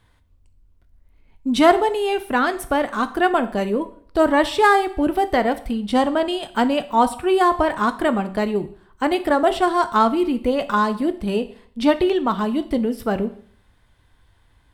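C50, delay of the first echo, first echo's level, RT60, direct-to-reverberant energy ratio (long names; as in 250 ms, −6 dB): 15.0 dB, no echo audible, no echo audible, 0.55 s, 10.5 dB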